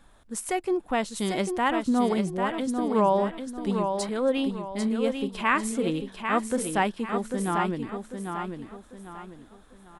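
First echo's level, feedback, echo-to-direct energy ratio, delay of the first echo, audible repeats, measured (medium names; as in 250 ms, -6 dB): -6.0 dB, 35%, -5.5 dB, 795 ms, 4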